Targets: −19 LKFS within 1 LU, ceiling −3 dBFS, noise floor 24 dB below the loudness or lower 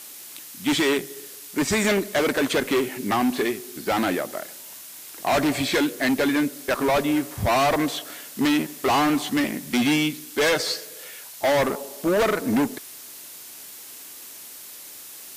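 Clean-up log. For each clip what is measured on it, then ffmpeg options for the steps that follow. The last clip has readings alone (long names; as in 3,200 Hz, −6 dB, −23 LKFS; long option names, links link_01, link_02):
background noise floor −41 dBFS; target noise floor −47 dBFS; integrated loudness −23.0 LKFS; sample peak −11.5 dBFS; target loudness −19.0 LKFS
→ -af "afftdn=noise_reduction=6:noise_floor=-41"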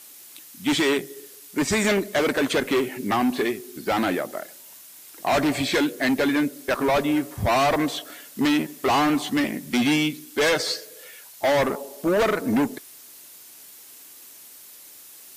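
background noise floor −46 dBFS; target noise floor −48 dBFS
→ -af "afftdn=noise_reduction=6:noise_floor=-46"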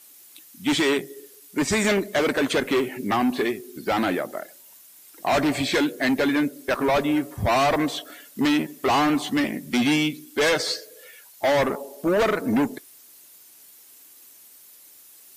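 background noise floor −50 dBFS; integrated loudness −23.5 LKFS; sample peak −12.0 dBFS; target loudness −19.0 LKFS
→ -af "volume=4.5dB"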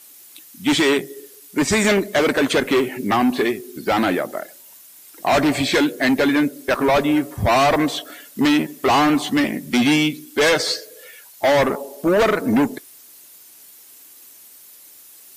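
integrated loudness −19.0 LKFS; sample peak −7.5 dBFS; background noise floor −46 dBFS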